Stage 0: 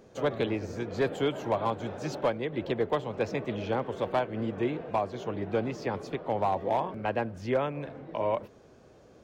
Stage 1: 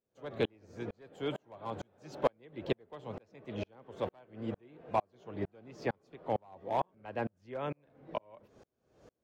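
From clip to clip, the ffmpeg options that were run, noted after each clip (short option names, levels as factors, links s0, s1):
-af "aeval=exprs='val(0)*pow(10,-40*if(lt(mod(-2.2*n/s,1),2*abs(-2.2)/1000),1-mod(-2.2*n/s,1)/(2*abs(-2.2)/1000),(mod(-2.2*n/s,1)-2*abs(-2.2)/1000)/(1-2*abs(-2.2)/1000))/20)':c=same,volume=1.12"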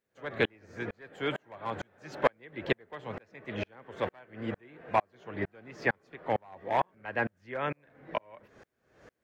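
-af "equalizer=f=1800:w=1.4:g=13,volume=1.26"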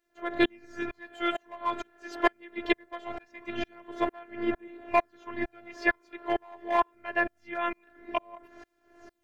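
-af "aphaser=in_gain=1:out_gain=1:delay=2.3:decay=0.37:speed=0.23:type=sinusoidal,afftfilt=real='hypot(re,im)*cos(PI*b)':imag='0':win_size=512:overlap=0.75,volume=2.11"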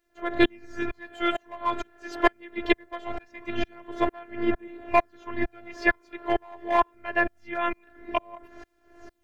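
-af "lowshelf=f=110:g=8.5,volume=1.41"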